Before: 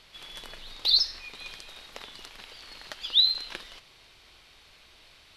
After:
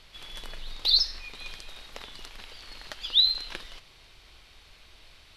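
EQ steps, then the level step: low shelf 78 Hz +11 dB; 0.0 dB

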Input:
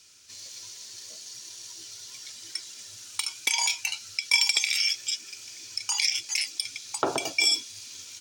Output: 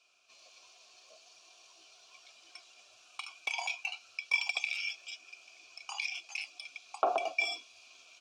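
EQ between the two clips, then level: vowel filter a; low shelf 140 Hz -6 dB; +7.0 dB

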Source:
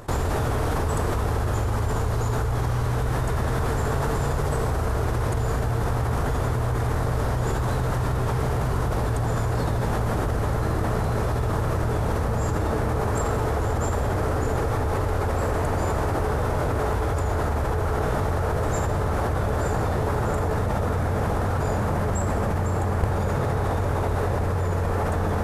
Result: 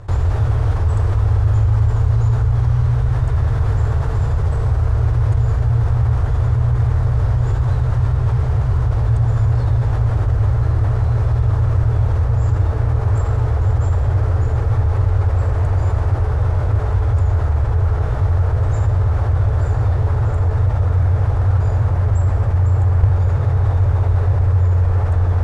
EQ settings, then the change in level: air absorption 73 m; resonant low shelf 140 Hz +9 dB, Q 3; -2.5 dB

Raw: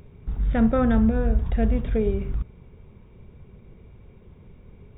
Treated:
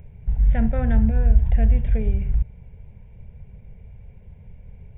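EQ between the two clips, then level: dynamic EQ 560 Hz, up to -5 dB, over -35 dBFS, Q 1.1; low shelf 180 Hz +7.5 dB; fixed phaser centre 1200 Hz, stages 6; 0.0 dB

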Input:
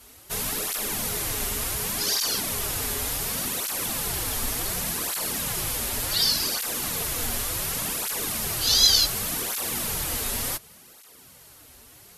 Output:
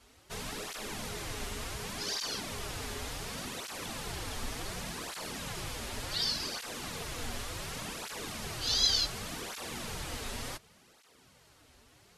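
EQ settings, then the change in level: air absorption 72 m; -6.5 dB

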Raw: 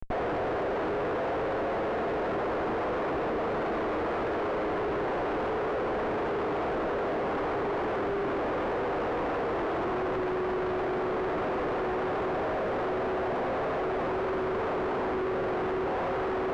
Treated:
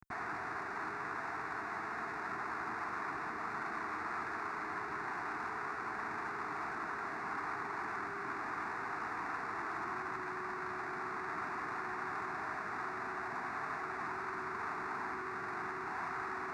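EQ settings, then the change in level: HPF 93 Hz 12 dB/oct; tilt shelf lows -8 dB; fixed phaser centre 1300 Hz, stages 4; -4.5 dB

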